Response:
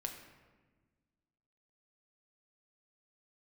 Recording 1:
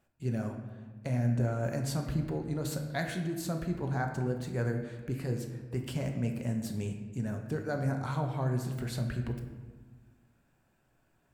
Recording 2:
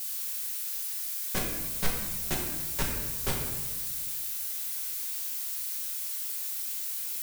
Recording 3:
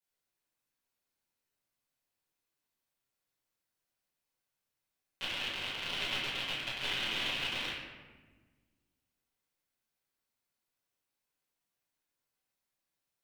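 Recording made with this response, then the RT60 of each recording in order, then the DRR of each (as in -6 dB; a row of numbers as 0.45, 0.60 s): 1; 1.4, 1.4, 1.3 s; 3.0, -3.0, -11.5 dB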